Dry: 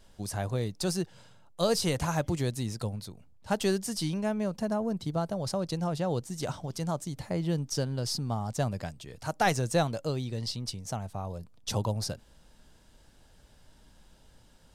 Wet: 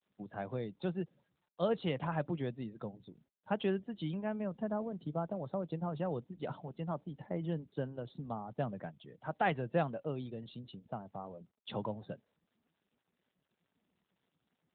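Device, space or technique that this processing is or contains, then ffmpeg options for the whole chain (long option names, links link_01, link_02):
mobile call with aggressive noise cancelling: -af "highpass=frequency=140:width=0.5412,highpass=frequency=140:width=1.3066,afftdn=noise_reduction=28:noise_floor=-48,volume=-5dB" -ar 8000 -c:a libopencore_amrnb -b:a 12200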